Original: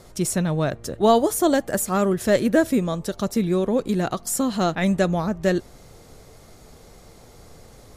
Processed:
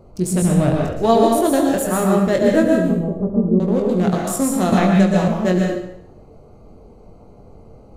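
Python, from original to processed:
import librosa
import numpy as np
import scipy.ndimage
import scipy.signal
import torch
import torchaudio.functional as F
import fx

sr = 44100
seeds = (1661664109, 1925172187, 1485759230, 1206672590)

p1 = fx.wiener(x, sr, points=25)
p2 = fx.bessel_lowpass(p1, sr, hz=550.0, order=4, at=(2.75, 3.6))
p3 = fx.rider(p2, sr, range_db=10, speed_s=0.5)
p4 = p2 + (p3 * 10.0 ** (-2.5 / 20.0))
p5 = fx.low_shelf(p4, sr, hz=150.0, db=10.5, at=(0.42, 0.87))
p6 = p5 + fx.room_early_taps(p5, sr, ms=(22, 71), db=(-5.5, -11.5), dry=0)
p7 = fx.rev_plate(p6, sr, seeds[0], rt60_s=0.71, hf_ratio=0.9, predelay_ms=105, drr_db=0.0)
p8 = fx.band_squash(p7, sr, depth_pct=100, at=(4.72, 5.28))
y = p8 * 10.0 ** (-4.5 / 20.0)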